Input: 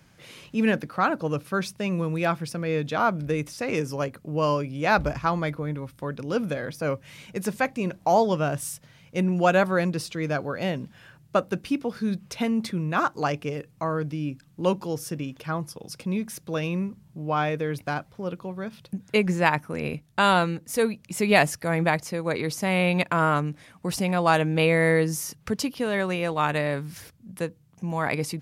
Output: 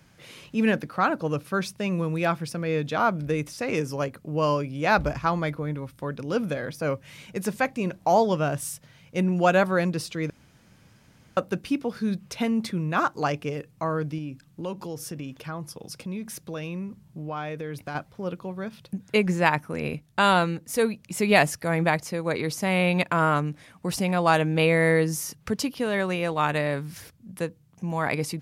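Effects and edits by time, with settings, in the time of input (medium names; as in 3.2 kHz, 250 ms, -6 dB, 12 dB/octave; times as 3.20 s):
10.30–11.37 s: room tone
14.18–17.95 s: compression 2.5:1, threshold -32 dBFS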